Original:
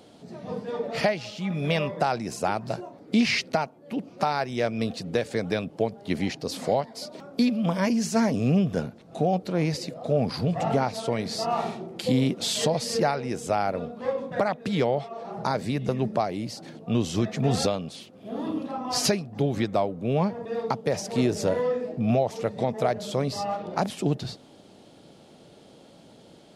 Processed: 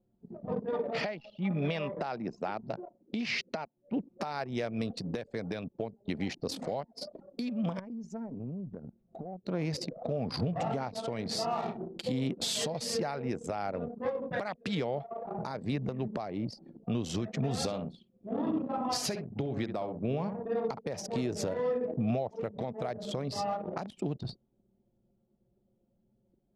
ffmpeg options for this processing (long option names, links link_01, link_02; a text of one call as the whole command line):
ffmpeg -i in.wav -filter_complex "[0:a]asettb=1/sr,asplit=3[link_01][link_02][link_03];[link_01]atrim=end=0.734[link_04];[link_02]atrim=start=0.73:end=3.78,asetpts=PTS-STARTPTS,afade=type=in:duration=0.004:curve=qsin,afade=type=out:start_time=3.046:duration=0.004:curve=qsin,highpass=140,lowpass=5100[link_05];[link_03]atrim=start=3.776[link_06];[link_04][link_05]acrossfade=duration=0.004:curve1=hsin:curve2=qsin[link_07];[link_07][link_06]acrossfade=duration=0.004:curve1=qsin:curve2=hsin,asettb=1/sr,asplit=3[link_08][link_09][link_10];[link_08]atrim=end=7.794[link_11];[link_09]atrim=start=7.79:end=9.46,asetpts=PTS-STARTPTS,afade=type=in:duration=0.004:curve=qsin,afade=type=out:start_time=1.666:duration=0.004:curve=qsin,acompressor=threshold=-35dB:ratio=8:attack=3.2:release=140:knee=1:detection=peak[link_12];[link_10]atrim=start=9.456[link_13];[link_11][link_12]acrossfade=duration=0.004:curve1=hsin:curve2=qsin[link_14];[link_14][link_13]acrossfade=duration=0.004:curve1=qsin:curve2=hsin,asettb=1/sr,asplit=3[link_15][link_16][link_17];[link_15]atrim=end=14.314[link_18];[link_16]atrim=start=14.31:end=14.75,asetpts=PTS-STARTPTS,afade=type=in:duration=0.004:curve=qsin,afade=type=out:start_time=0.436:duration=0.004:curve=qsin,equalizer=frequency=3000:width=0.6:gain=6.5[link_19];[link_17]atrim=start=14.746[link_20];[link_18][link_19]acrossfade=duration=0.004:curve1=hsin:curve2=qsin[link_21];[link_21][link_20]acrossfade=duration=0.004:curve1=qsin:curve2=hsin,asettb=1/sr,asplit=3[link_22][link_23][link_24];[link_22]atrim=end=17.554[link_25];[link_23]atrim=start=17.55:end=20.79,asetpts=PTS-STARTPTS,afade=type=in:duration=0.004:curve=qsin,afade=type=out:start_time=3.236:duration=0.004:curve=qsin,asplit=2[link_26][link_27];[link_27]adelay=66,lowpass=frequency=3300:poles=1,volume=-9dB,asplit=2[link_28][link_29];[link_29]adelay=66,lowpass=frequency=3300:poles=1,volume=0.27,asplit=2[link_30][link_31];[link_31]adelay=66,lowpass=frequency=3300:poles=1,volume=0.27[link_32];[link_26][link_28][link_30][link_32]amix=inputs=4:normalize=0,atrim=end_sample=142884[link_33];[link_24]atrim=start=20.786[link_34];[link_25][link_33]acrossfade=duration=0.004:curve1=hsin:curve2=qsin[link_35];[link_35][link_34]acrossfade=duration=0.004:curve1=qsin:curve2=hsin,anlmdn=6.31,acompressor=threshold=-26dB:ratio=4,alimiter=limit=-22.5dB:level=0:latency=1:release=329" out.wav